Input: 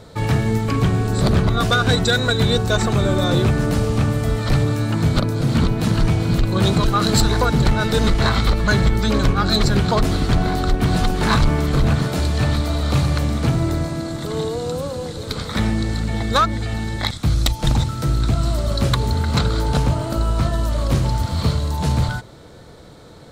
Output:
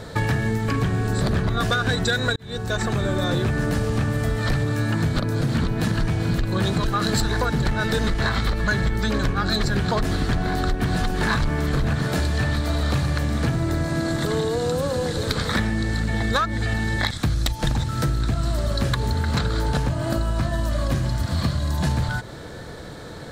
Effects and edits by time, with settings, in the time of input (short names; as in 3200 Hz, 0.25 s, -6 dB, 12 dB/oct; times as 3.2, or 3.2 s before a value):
2.36–4.37 fade in equal-power
19.89–21.87 notch comb 450 Hz
whole clip: bell 1700 Hz +9.5 dB 0.22 oct; compressor, threshold -25 dBFS; gain +5.5 dB